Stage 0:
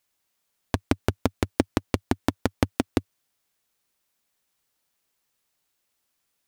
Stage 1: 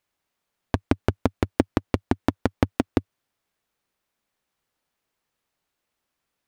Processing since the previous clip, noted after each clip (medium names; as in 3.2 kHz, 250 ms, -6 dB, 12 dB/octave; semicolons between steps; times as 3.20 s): treble shelf 3.7 kHz -11.5 dB; trim +2 dB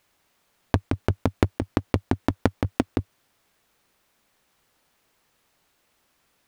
compressor with a negative ratio -23 dBFS, ratio -0.5; trim +6 dB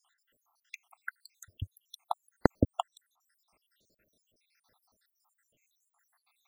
random holes in the spectrogram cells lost 85%; trim +2 dB